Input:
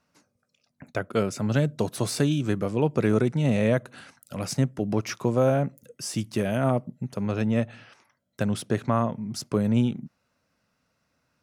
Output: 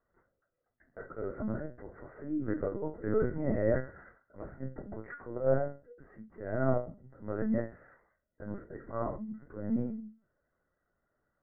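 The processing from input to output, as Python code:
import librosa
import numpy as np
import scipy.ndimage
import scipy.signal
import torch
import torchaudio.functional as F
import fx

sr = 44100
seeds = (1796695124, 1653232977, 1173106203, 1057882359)

y = scipy.signal.sosfilt(scipy.signal.butter(2, 64.0, 'highpass', fs=sr, output='sos'), x)
y = fx.auto_swell(y, sr, attack_ms=151.0)
y = scipy.signal.sosfilt(scipy.signal.cheby1(6, 6, 2000.0, 'lowpass', fs=sr, output='sos'), y)
y = fx.room_flutter(y, sr, wall_m=3.9, rt60_s=0.32)
y = fx.lpc_vocoder(y, sr, seeds[0], excitation='pitch_kept', order=16)
y = y * 10.0 ** (-5.0 / 20.0)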